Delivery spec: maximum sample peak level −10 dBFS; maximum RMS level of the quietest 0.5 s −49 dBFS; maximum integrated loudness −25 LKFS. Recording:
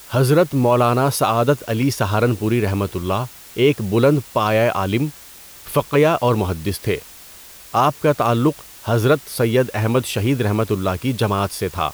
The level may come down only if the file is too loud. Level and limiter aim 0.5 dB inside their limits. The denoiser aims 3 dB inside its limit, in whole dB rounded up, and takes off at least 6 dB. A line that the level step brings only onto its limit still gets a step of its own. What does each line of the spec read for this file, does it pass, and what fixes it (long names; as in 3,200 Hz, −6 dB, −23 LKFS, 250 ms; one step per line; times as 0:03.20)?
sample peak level −5.0 dBFS: out of spec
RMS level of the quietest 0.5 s −41 dBFS: out of spec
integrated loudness −19.0 LKFS: out of spec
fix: broadband denoise 6 dB, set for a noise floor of −41 dBFS
level −6.5 dB